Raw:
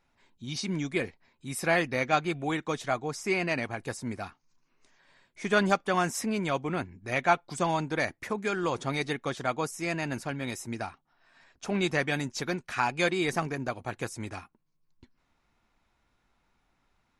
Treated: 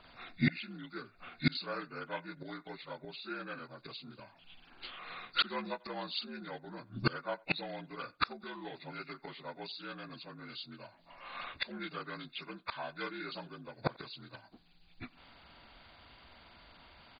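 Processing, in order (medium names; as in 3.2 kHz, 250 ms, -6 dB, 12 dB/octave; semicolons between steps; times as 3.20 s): frequency axis rescaled in octaves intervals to 79%; peaking EQ 4.4 kHz +14.5 dB 1.9 oct; inverted gate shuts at -29 dBFS, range -29 dB; speakerphone echo 90 ms, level -25 dB; trim +14 dB; MP2 32 kbps 44.1 kHz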